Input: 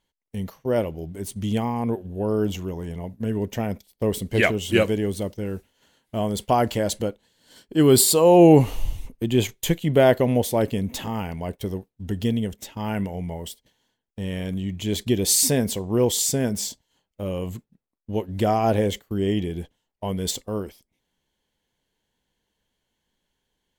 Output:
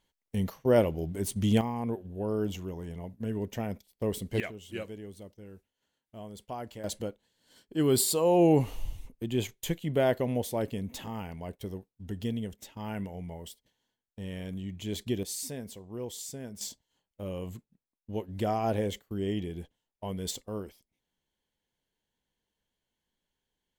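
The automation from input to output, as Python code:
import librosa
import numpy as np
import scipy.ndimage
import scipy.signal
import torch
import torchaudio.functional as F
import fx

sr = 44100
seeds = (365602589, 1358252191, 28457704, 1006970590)

y = fx.gain(x, sr, db=fx.steps((0.0, 0.0), (1.61, -7.5), (4.4, -19.0), (6.84, -9.5), (15.23, -18.0), (16.61, -8.5)))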